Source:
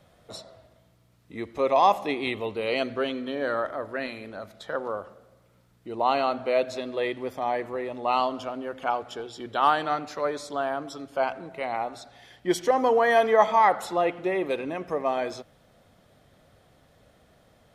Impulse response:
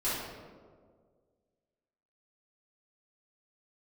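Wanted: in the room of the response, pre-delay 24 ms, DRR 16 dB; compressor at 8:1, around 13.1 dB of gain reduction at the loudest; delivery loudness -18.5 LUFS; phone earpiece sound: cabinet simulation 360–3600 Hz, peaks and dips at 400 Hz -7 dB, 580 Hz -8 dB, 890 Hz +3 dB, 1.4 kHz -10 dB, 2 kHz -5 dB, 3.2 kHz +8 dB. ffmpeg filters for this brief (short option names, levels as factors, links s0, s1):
-filter_complex "[0:a]acompressor=threshold=0.0398:ratio=8,asplit=2[s0][s1];[1:a]atrim=start_sample=2205,adelay=24[s2];[s1][s2]afir=irnorm=-1:irlink=0,volume=0.0631[s3];[s0][s3]amix=inputs=2:normalize=0,highpass=360,equalizer=f=400:t=q:w=4:g=-7,equalizer=f=580:t=q:w=4:g=-8,equalizer=f=890:t=q:w=4:g=3,equalizer=f=1400:t=q:w=4:g=-10,equalizer=f=2000:t=q:w=4:g=-5,equalizer=f=3200:t=q:w=4:g=8,lowpass=f=3600:w=0.5412,lowpass=f=3600:w=1.3066,volume=8.91"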